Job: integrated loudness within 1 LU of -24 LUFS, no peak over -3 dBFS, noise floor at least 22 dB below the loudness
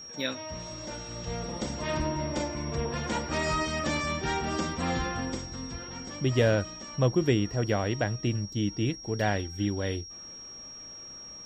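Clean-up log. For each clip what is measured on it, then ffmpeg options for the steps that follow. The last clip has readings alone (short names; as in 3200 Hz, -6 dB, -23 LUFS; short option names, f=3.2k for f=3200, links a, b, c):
steady tone 5600 Hz; tone level -42 dBFS; loudness -30.0 LUFS; peak -12.5 dBFS; loudness target -24.0 LUFS
-> -af "bandreject=f=5.6k:w=30"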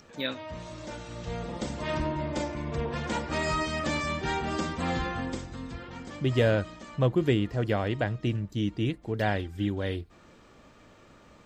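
steady tone none; loudness -30.5 LUFS; peak -12.5 dBFS; loudness target -24.0 LUFS
-> -af "volume=6.5dB"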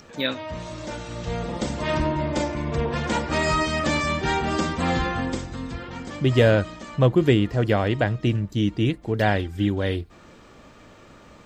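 loudness -24.0 LUFS; peak -6.0 dBFS; noise floor -49 dBFS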